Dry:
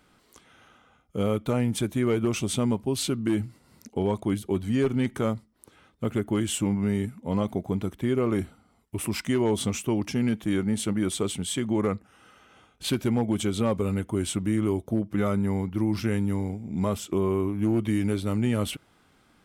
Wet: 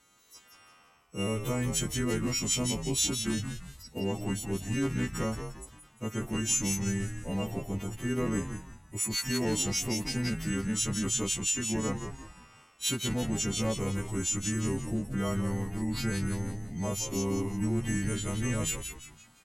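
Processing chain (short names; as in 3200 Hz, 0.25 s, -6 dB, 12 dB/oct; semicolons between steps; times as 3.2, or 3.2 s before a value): frequency quantiser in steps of 2 st; frequency-shifting echo 0.173 s, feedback 38%, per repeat -85 Hz, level -7 dB; formant shift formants -2 st; gain -5.5 dB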